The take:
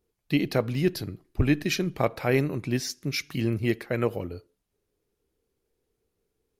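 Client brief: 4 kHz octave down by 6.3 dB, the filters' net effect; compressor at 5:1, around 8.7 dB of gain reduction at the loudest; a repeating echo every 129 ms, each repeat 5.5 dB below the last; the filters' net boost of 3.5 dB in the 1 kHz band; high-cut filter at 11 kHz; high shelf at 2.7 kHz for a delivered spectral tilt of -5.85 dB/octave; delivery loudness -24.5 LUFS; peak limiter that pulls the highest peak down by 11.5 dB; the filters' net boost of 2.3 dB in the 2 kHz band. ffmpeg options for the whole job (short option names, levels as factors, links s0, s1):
-af "lowpass=11000,equalizer=f=1000:t=o:g=4.5,equalizer=f=2000:t=o:g=6,highshelf=f=2700:g=-6.5,equalizer=f=4000:t=o:g=-5,acompressor=threshold=0.0447:ratio=5,alimiter=level_in=1.06:limit=0.0631:level=0:latency=1,volume=0.944,aecho=1:1:129|258|387|516|645|774|903:0.531|0.281|0.149|0.079|0.0419|0.0222|0.0118,volume=3.35"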